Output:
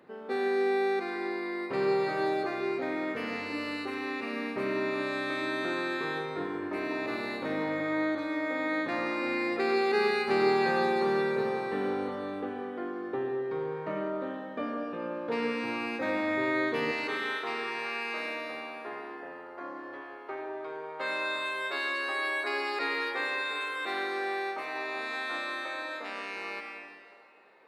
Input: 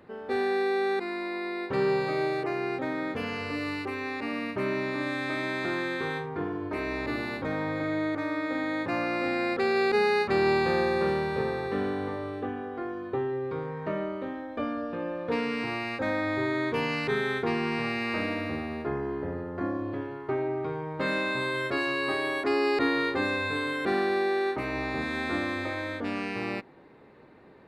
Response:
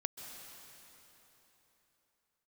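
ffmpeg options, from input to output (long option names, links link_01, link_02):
-filter_complex "[0:a]asetnsamples=nb_out_samples=441:pad=0,asendcmd='16.91 highpass f 630',highpass=190[link_01];[1:a]atrim=start_sample=2205,asetrate=79380,aresample=44100[link_02];[link_01][link_02]afir=irnorm=-1:irlink=0,volume=4dB"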